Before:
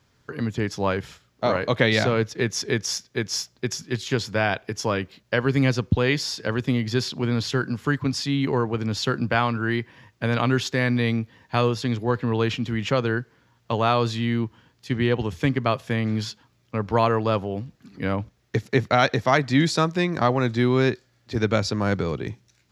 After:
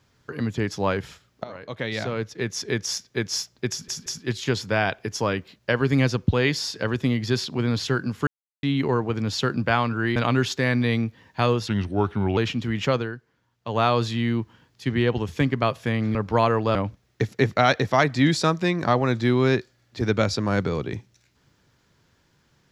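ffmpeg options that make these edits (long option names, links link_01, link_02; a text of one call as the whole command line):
ffmpeg -i in.wav -filter_complex "[0:a]asplit=13[link_01][link_02][link_03][link_04][link_05][link_06][link_07][link_08][link_09][link_10][link_11][link_12][link_13];[link_01]atrim=end=1.44,asetpts=PTS-STARTPTS,afade=type=out:start_time=1.436:duration=0.004:curve=hsin:silence=0.1[link_14];[link_02]atrim=start=1.44:end=3.882,asetpts=PTS-STARTPTS,afade=type=in:duration=1.64:silence=0.1[link_15];[link_03]atrim=start=3.698:end=3.882[link_16];[link_04]atrim=start=3.698:end=7.91,asetpts=PTS-STARTPTS,afade=type=out:start_time=4.208:duration=0.004:curve=hsin[link_17];[link_05]atrim=start=7.91:end=8.27,asetpts=PTS-STARTPTS,volume=0[link_18];[link_06]atrim=start=8.27:end=9.802,asetpts=PTS-STARTPTS,afade=type=in:duration=0.004:curve=hsin[link_19];[link_07]atrim=start=10.308:end=11.834[link_20];[link_08]atrim=start=11.83:end=12.41,asetpts=PTS-STARTPTS,asetrate=37044,aresample=44100[link_21];[link_09]atrim=start=12.406:end=13.19,asetpts=PTS-STARTPTS,afade=type=out:start_time=0.604:duration=0.18:curve=qua:silence=0.334965[link_22];[link_10]atrim=start=13.19:end=13.64,asetpts=PTS-STARTPTS,volume=-9.5dB[link_23];[link_11]atrim=start=13.64:end=16.192,asetpts=PTS-STARTPTS,afade=type=in:duration=0.18:curve=qua:silence=0.334965[link_24];[link_12]atrim=start=16.748:end=17.352[link_25];[link_13]atrim=start=18.088[link_26];[link_14][link_15]concat=n=2:v=0:a=1[link_27];[link_27][link_16]acrossfade=duration=0.004:curve1=hsin:curve2=hsin[link_28];[link_17][link_18][link_19]concat=n=3:v=0:a=1[link_29];[link_28][link_29]acrossfade=duration=0.004:curve1=hsin:curve2=hsin[link_30];[link_30][link_20]acrossfade=duration=0.004:curve1=hsin:curve2=hsin[link_31];[link_31][link_21]acrossfade=duration=0.004:curve1=hsin:curve2=hsin[link_32];[link_22][link_23][link_24]concat=n=3:v=0:a=1[link_33];[link_32][link_33]acrossfade=duration=0.004:curve1=hsin:curve2=hsin[link_34];[link_34][link_25]acrossfade=duration=0.004:curve1=hsin:curve2=hsin[link_35];[link_35][link_26]acrossfade=duration=0.004:curve1=hsin:curve2=hsin" out.wav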